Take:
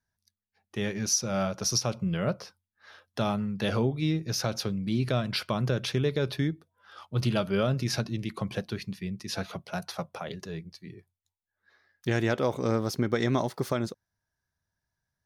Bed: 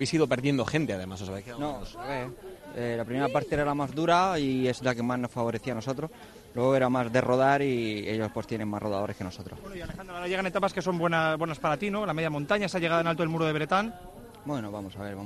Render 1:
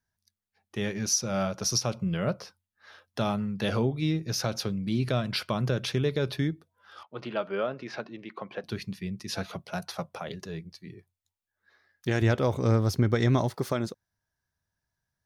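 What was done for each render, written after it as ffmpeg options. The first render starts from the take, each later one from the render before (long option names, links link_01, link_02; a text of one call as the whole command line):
ffmpeg -i in.wav -filter_complex "[0:a]asettb=1/sr,asplit=3[link_01][link_02][link_03];[link_01]atrim=end=7.034[link_04];[link_02]atrim=start=7.03:end=8.64,asetpts=PTS-STARTPTS,afade=type=in:duration=0.004:curve=qsin,afade=type=out:start_time=1.606:duration=0.004:curve=qsin,highpass=380,lowpass=2200[link_05];[link_03]atrim=start=8.636[link_06];[link_04][link_05]acrossfade=duration=0.004:curve1=hsin:curve2=qsin[link_07];[link_07][link_06]acrossfade=duration=0.004:curve1=qsin:curve2=hsin,asettb=1/sr,asplit=3[link_08][link_09][link_10];[link_08]atrim=end=12.214[link_11];[link_09]atrim=start=12.21:end=13.55,asetpts=PTS-STARTPTS,afade=type=in:duration=0.004:curve=qsin,afade=type=out:start_time=1.336:duration=0.004:curve=qsin,equalizer=frequency=88:width=1.5:gain=14[link_12];[link_10]atrim=start=13.546[link_13];[link_11][link_12]acrossfade=duration=0.004:curve1=hsin:curve2=qsin[link_14];[link_14][link_13]acrossfade=duration=0.004:curve1=qsin:curve2=hsin" out.wav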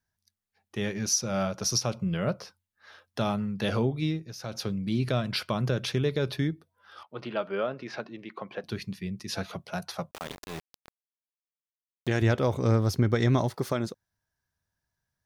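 ffmpeg -i in.wav -filter_complex "[0:a]asettb=1/sr,asplit=3[link_01][link_02][link_03];[link_01]atrim=end=6.444[link_04];[link_02]atrim=start=6.44:end=7.85,asetpts=PTS-STARTPTS,afade=type=in:duration=0.004:curve=qsin,afade=type=out:start_time=1.406:duration=0.004:curve=qsin,bandreject=frequency=7000:width=6.1[link_05];[link_03]atrim=start=7.846[link_06];[link_04][link_05]acrossfade=duration=0.004:curve1=hsin:curve2=qsin[link_07];[link_07][link_06]acrossfade=duration=0.004:curve1=qsin:curve2=hsin,asettb=1/sr,asplit=3[link_08][link_09][link_10];[link_08]atrim=end=10.114[link_11];[link_09]atrim=start=10.11:end=12.08,asetpts=PTS-STARTPTS,afade=type=in:duration=0.004:curve=qsin,afade=type=out:start_time=1.966:duration=0.004:curve=qsin,aeval=exprs='val(0)*gte(abs(val(0)),0.02)':channel_layout=same[link_12];[link_10]atrim=start=12.076[link_13];[link_11][link_12]acrossfade=duration=0.004:curve1=hsin:curve2=qsin[link_14];[link_14][link_13]acrossfade=duration=0.004:curve1=qsin:curve2=hsin,asplit=3[link_15][link_16][link_17];[link_15]atrim=end=4.33,asetpts=PTS-STARTPTS,afade=type=out:start_time=4.02:duration=0.31:silence=0.237137[link_18];[link_16]atrim=start=4.33:end=4.39,asetpts=PTS-STARTPTS,volume=-12.5dB[link_19];[link_17]atrim=start=4.39,asetpts=PTS-STARTPTS,afade=type=in:duration=0.31:silence=0.237137[link_20];[link_18][link_19][link_20]concat=n=3:v=0:a=1" out.wav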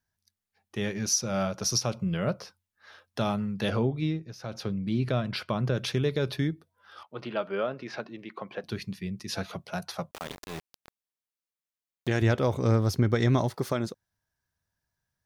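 ffmpeg -i in.wav -filter_complex "[0:a]asettb=1/sr,asplit=3[link_01][link_02][link_03];[link_01]atrim=end=3.704[link_04];[link_02]atrim=start=3.7:end=5.75,asetpts=PTS-STARTPTS,afade=type=in:duration=0.004:curve=qsin,afade=type=out:start_time=2.046:duration=0.004:curve=qsin,highshelf=frequency=4600:gain=-10[link_05];[link_03]atrim=start=5.746[link_06];[link_04][link_05]acrossfade=duration=0.004:curve1=hsin:curve2=qsin[link_07];[link_07][link_06]acrossfade=duration=0.004:curve1=qsin:curve2=hsin" out.wav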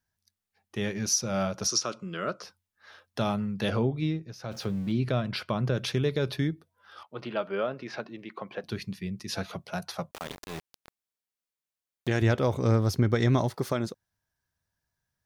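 ffmpeg -i in.wav -filter_complex "[0:a]asettb=1/sr,asplit=3[link_01][link_02][link_03];[link_01]atrim=end=1.674[link_04];[link_02]atrim=start=1.67:end=2.43,asetpts=PTS-STARTPTS,afade=type=in:duration=0.004:curve=qsin,afade=type=out:start_time=0.756:duration=0.004:curve=qsin,highpass=310,equalizer=frequency=340:width_type=q:width=4:gain=4,equalizer=frequency=520:width_type=q:width=4:gain=-3,equalizer=frequency=800:width_type=q:width=4:gain=-9,equalizer=frequency=1300:width_type=q:width=4:gain=7,equalizer=frequency=2200:width_type=q:width=4:gain=-3,equalizer=frequency=7000:width_type=q:width=4:gain=4,lowpass=frequency=9100:width=0.5412,lowpass=frequency=9100:width=1.3066[link_05];[link_03]atrim=start=2.426[link_06];[link_04][link_05]acrossfade=duration=0.004:curve1=hsin:curve2=qsin[link_07];[link_07][link_06]acrossfade=duration=0.004:curve1=qsin:curve2=hsin,asettb=1/sr,asplit=3[link_08][link_09][link_10];[link_08]atrim=end=4.514[link_11];[link_09]atrim=start=4.51:end=4.92,asetpts=PTS-STARTPTS,afade=type=in:duration=0.004:curve=qsin,afade=type=out:start_time=0.406:duration=0.004:curve=qsin,aeval=exprs='val(0)+0.5*0.00562*sgn(val(0))':channel_layout=same[link_12];[link_10]atrim=start=4.916[link_13];[link_11][link_12]acrossfade=duration=0.004:curve1=hsin:curve2=qsin[link_14];[link_14][link_13]acrossfade=duration=0.004:curve1=qsin:curve2=hsin" out.wav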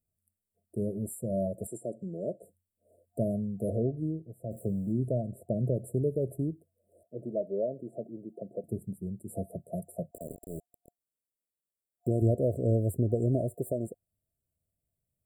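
ffmpeg -i in.wav -af "afftfilt=real='re*(1-between(b*sr/4096,700,7300))':imag='im*(1-between(b*sr/4096,700,7300))':win_size=4096:overlap=0.75,adynamicequalizer=threshold=0.01:dfrequency=180:dqfactor=0.74:tfrequency=180:tqfactor=0.74:attack=5:release=100:ratio=0.375:range=3:mode=cutabove:tftype=bell" out.wav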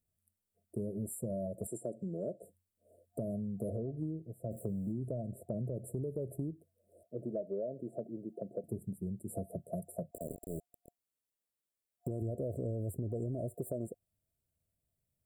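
ffmpeg -i in.wav -af "alimiter=limit=-23dB:level=0:latency=1:release=16,acompressor=threshold=-34dB:ratio=6" out.wav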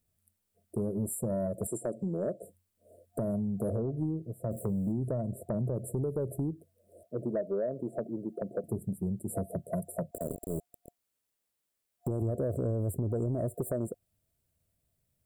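ffmpeg -i in.wav -af "aeval=exprs='0.0631*sin(PI/2*1.41*val(0)/0.0631)':channel_layout=same" out.wav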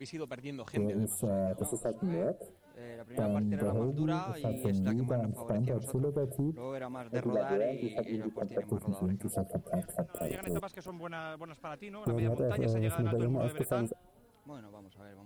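ffmpeg -i in.wav -i bed.wav -filter_complex "[1:a]volume=-16dB[link_01];[0:a][link_01]amix=inputs=2:normalize=0" out.wav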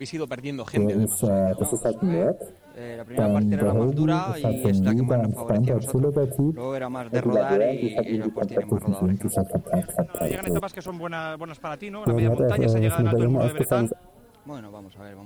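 ffmpeg -i in.wav -af "volume=10.5dB" out.wav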